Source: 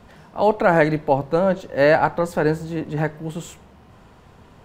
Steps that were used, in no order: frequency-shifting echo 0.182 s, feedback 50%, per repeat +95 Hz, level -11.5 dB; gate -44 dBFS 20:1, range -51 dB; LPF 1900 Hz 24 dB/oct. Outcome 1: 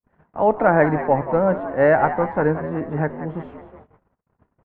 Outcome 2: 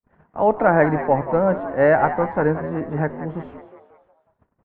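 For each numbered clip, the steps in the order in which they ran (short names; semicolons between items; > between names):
frequency-shifting echo > LPF > gate; gate > frequency-shifting echo > LPF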